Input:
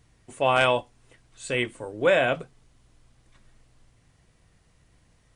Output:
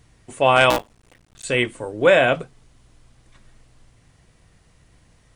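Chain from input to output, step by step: 0.7–1.45 cycle switcher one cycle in 2, muted; gain +6 dB

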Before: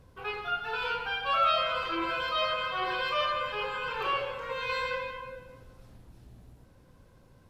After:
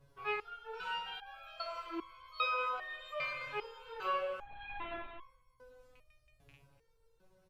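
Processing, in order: rattling part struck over -46 dBFS, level -36 dBFS; bell 230 Hz -12.5 dB 0.5 oct; 4.39–5.2 LPC vocoder at 8 kHz whisper; speakerphone echo 0.24 s, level -17 dB; stepped resonator 2.5 Hz 140–1100 Hz; gain +4.5 dB

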